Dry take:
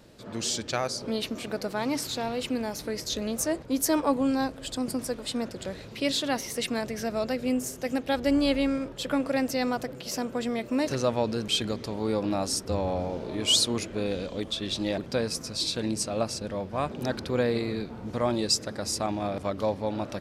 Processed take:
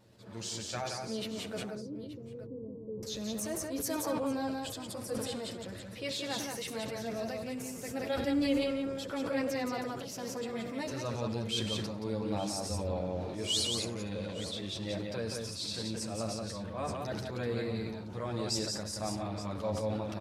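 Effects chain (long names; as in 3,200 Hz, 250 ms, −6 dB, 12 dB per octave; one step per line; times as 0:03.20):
high-pass filter 80 Hz
multi-voice chorus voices 6, 0.88 Hz, delay 10 ms, depth 1.2 ms
0:01.59–0:03.03: Chebyshev low-pass with heavy ripple 540 Hz, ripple 3 dB
pitch vibrato 1.6 Hz 5.3 cents
hum with harmonics 120 Hz, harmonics 9, −63 dBFS −7 dB per octave
multi-tap delay 67/99/176/244/875 ms −19.5/−16/−4/−19.5/−15.5 dB
level that may fall only so fast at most 32 dB per second
level −7 dB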